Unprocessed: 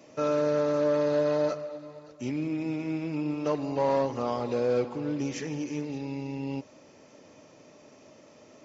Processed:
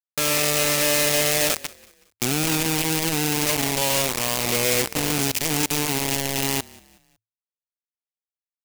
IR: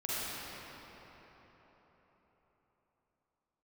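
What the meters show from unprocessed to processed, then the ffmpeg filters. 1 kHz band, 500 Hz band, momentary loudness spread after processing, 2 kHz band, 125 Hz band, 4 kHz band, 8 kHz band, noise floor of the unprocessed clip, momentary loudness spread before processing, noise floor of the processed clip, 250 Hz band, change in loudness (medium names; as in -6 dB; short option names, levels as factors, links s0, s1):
+5.5 dB, 0.0 dB, 6 LU, +17.5 dB, +7.0 dB, +23.5 dB, no reading, -55 dBFS, 10 LU, under -85 dBFS, +2.5 dB, +8.5 dB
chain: -filter_complex "[0:a]lowshelf=f=110:g=9.5,acrossover=split=2400[s0][s1];[s0]alimiter=level_in=1.12:limit=0.0631:level=0:latency=1:release=10,volume=0.891[s2];[s1]flanger=delay=16.5:depth=4.2:speed=2.6[s3];[s2][s3]amix=inputs=2:normalize=0,acrusher=bits=4:mix=0:aa=0.000001,aexciter=amount=3.2:drive=3:freq=2100,asplit=4[s4][s5][s6][s7];[s5]adelay=185,afreqshift=-37,volume=0.0708[s8];[s6]adelay=370,afreqshift=-74,volume=0.0282[s9];[s7]adelay=555,afreqshift=-111,volume=0.0114[s10];[s4][s8][s9][s10]amix=inputs=4:normalize=0,volume=1.68"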